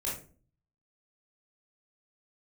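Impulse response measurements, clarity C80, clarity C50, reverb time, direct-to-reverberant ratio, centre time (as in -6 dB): 10.5 dB, 4.5 dB, 0.40 s, -6.5 dB, 38 ms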